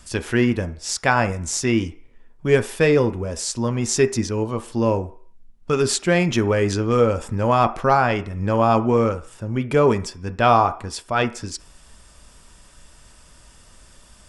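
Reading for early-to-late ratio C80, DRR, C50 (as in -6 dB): 20.5 dB, 10.0 dB, 15.5 dB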